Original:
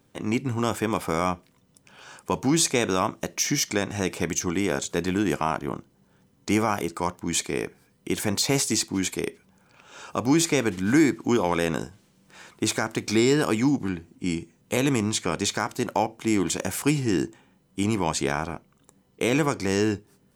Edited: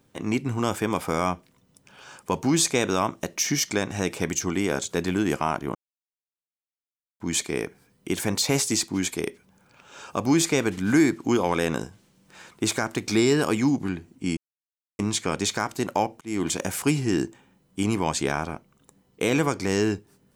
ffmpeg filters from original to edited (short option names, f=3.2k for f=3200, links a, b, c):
-filter_complex "[0:a]asplit=6[a][b][c][d][e][f];[a]atrim=end=5.75,asetpts=PTS-STARTPTS,afade=t=out:st=5.746:d=0.004:c=hsin[g];[b]atrim=start=5.75:end=7.2,asetpts=PTS-STARTPTS,volume=0[h];[c]atrim=start=7.2:end=14.37,asetpts=PTS-STARTPTS,afade=t=in:d=0.004:c=hsin,afade=t=out:st=7.166:d=0.004:c=hsin[i];[d]atrim=start=14.37:end=14.99,asetpts=PTS-STARTPTS,volume=0[j];[e]atrim=start=14.99:end=16.21,asetpts=PTS-STARTPTS,afade=t=in:d=0.004:c=hsin,afade=t=out:st=1.216:d=0.004:c=hsin[k];[f]atrim=start=16.21,asetpts=PTS-STARTPTS,afade=t=in:d=0.25[l];[g][h][i][j][k][l]concat=n=6:v=0:a=1"